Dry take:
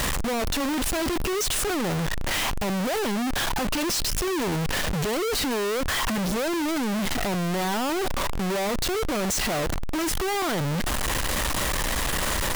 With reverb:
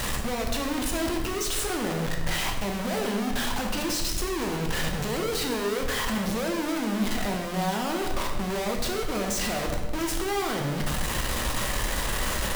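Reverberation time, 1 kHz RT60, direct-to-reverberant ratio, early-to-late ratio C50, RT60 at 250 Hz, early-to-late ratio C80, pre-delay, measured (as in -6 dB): 1.2 s, 1.1 s, 1.5 dB, 5.0 dB, 1.4 s, 7.0 dB, 7 ms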